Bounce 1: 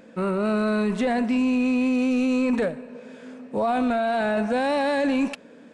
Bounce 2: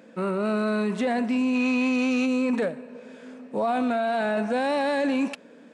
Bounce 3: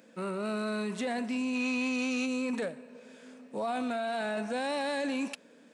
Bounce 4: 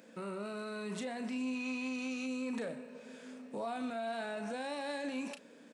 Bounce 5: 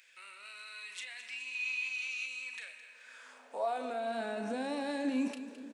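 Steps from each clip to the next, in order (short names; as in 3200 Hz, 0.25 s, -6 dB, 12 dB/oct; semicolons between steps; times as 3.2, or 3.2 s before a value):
spectral gain 1.55–2.26, 770–7300 Hz +6 dB; HPF 150 Hz 12 dB/oct; gain -1.5 dB
high shelf 3300 Hz +11 dB; gain -8.5 dB
limiter -32 dBFS, peak gain reduction 10 dB; doubler 35 ms -9.5 dB
high-pass sweep 2300 Hz -> 260 Hz, 2.83–4.17; feedback echo 0.214 s, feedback 43%, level -12.5 dB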